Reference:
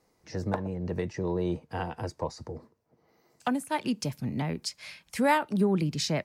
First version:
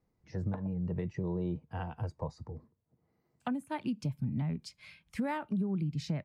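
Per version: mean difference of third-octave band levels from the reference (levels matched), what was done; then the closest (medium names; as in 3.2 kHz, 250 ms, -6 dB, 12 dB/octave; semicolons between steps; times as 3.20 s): 6.0 dB: spectral noise reduction 7 dB; tone controls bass +14 dB, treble -9 dB; compression 6:1, threshold -23 dBFS, peak gain reduction 10.5 dB; trim -7 dB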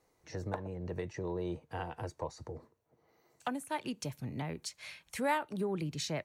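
2.0 dB: peaking EQ 210 Hz -7 dB 0.62 oct; band-stop 5 kHz, Q 7; in parallel at -0.5 dB: compression, threshold -37 dBFS, peak gain reduction 16.5 dB; on the sum: trim -8.5 dB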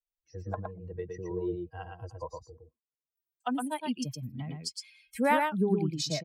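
9.5 dB: expander on every frequency bin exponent 2; peaking EQ 95 Hz -2.5 dB 1.4 oct; on a send: delay 114 ms -4 dB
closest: second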